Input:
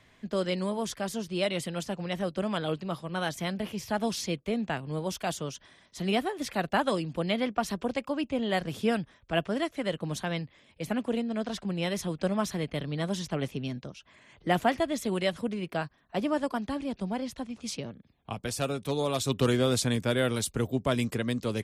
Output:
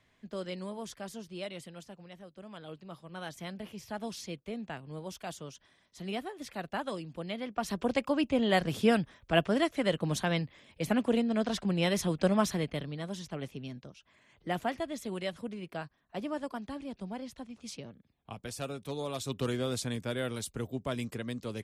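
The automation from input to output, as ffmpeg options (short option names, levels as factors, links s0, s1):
-af "volume=4.47,afade=t=out:st=1.07:d=1.23:silence=0.281838,afade=t=in:st=2.3:d=1.15:silence=0.281838,afade=t=in:st=7.47:d=0.5:silence=0.281838,afade=t=out:st=12.41:d=0.57:silence=0.334965"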